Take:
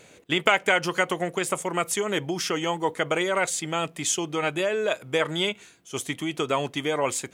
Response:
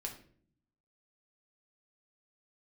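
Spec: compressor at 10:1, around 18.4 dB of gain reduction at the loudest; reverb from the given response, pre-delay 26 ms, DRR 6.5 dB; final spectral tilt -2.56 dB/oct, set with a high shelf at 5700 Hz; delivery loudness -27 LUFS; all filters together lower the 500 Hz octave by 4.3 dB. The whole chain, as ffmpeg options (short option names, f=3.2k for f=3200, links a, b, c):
-filter_complex "[0:a]equalizer=f=500:t=o:g=-5.5,highshelf=f=5.7k:g=7.5,acompressor=threshold=-35dB:ratio=10,asplit=2[a][b];[1:a]atrim=start_sample=2205,adelay=26[c];[b][c]afir=irnorm=-1:irlink=0,volume=-5dB[d];[a][d]amix=inputs=2:normalize=0,volume=10.5dB"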